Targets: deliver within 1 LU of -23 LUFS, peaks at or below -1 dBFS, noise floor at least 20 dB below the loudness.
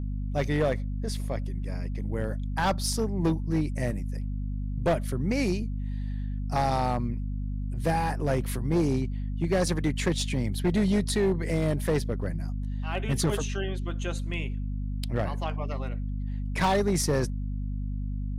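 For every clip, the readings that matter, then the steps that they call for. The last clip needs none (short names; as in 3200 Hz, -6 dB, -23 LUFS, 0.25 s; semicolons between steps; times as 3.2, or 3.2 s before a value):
clipped 1.4%; flat tops at -19.0 dBFS; hum 50 Hz; harmonics up to 250 Hz; hum level -29 dBFS; loudness -29.0 LUFS; peak -19.0 dBFS; loudness target -23.0 LUFS
-> clip repair -19 dBFS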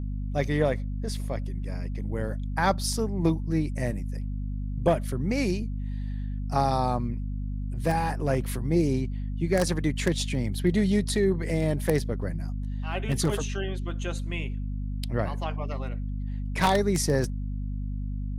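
clipped 0.0%; hum 50 Hz; harmonics up to 250 Hz; hum level -29 dBFS
-> notches 50/100/150/200/250 Hz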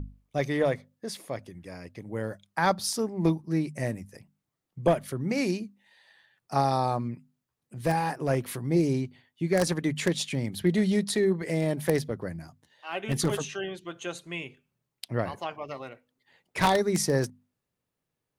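hum none; loudness -29.0 LUFS; peak -9.0 dBFS; loudness target -23.0 LUFS
-> gain +6 dB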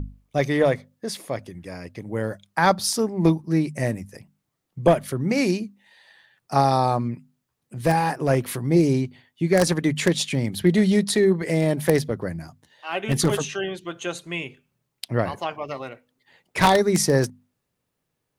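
loudness -23.0 LUFS; peak -3.0 dBFS; noise floor -78 dBFS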